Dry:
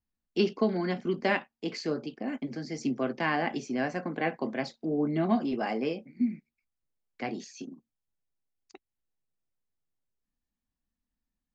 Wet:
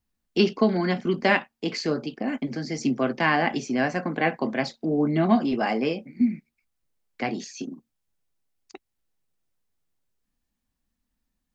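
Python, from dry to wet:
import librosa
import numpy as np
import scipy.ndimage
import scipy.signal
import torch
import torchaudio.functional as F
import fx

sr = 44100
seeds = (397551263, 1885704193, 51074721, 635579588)

y = fx.dynamic_eq(x, sr, hz=400.0, q=1.0, threshold_db=-38.0, ratio=4.0, max_db=-3)
y = y * 10.0 ** (7.5 / 20.0)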